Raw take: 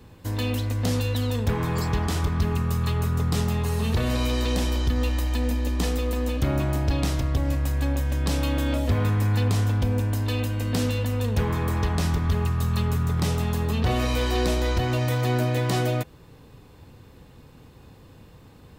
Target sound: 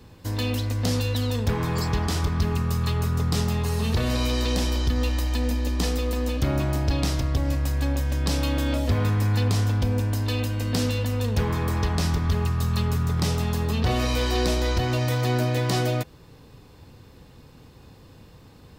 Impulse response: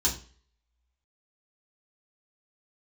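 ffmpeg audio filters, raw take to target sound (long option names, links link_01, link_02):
-af "equalizer=frequency=5000:width=1.9:gain=5"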